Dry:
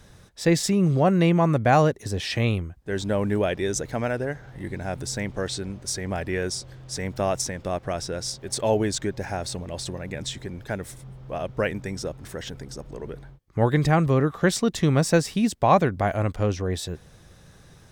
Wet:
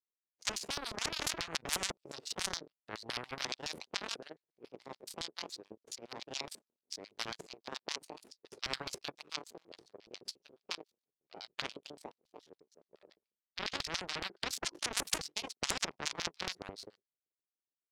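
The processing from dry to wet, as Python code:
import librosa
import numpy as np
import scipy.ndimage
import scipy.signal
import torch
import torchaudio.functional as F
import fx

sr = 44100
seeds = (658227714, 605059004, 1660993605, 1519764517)

y = fx.pitch_ramps(x, sr, semitones=11.0, every_ms=1381)
y = fx.hum_notches(y, sr, base_hz=50, count=8)
y = fx.power_curve(y, sr, exponent=3.0)
y = fx.filter_lfo_bandpass(y, sr, shape='square', hz=7.1, low_hz=410.0, high_hz=4600.0, q=2.9)
y = fx.spectral_comp(y, sr, ratio=10.0)
y = y * 10.0 ** (15.0 / 20.0)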